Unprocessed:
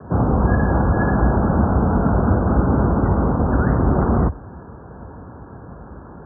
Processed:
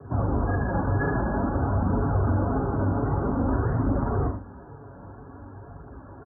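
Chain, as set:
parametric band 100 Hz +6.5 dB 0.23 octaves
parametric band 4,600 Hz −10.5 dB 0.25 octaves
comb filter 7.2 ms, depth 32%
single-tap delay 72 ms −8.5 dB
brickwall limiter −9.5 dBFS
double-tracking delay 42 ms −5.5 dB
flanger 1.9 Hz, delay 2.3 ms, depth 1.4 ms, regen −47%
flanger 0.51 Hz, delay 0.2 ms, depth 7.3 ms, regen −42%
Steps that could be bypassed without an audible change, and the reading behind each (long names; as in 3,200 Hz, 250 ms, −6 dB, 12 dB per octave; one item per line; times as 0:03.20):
parametric band 4,600 Hz: nothing at its input above 1,500 Hz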